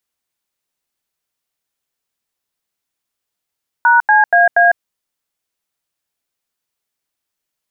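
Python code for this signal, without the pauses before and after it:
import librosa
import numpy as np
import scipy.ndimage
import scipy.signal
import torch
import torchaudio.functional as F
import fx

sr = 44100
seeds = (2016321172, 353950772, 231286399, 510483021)

y = fx.dtmf(sr, digits='#CAA', tone_ms=152, gap_ms=86, level_db=-9.5)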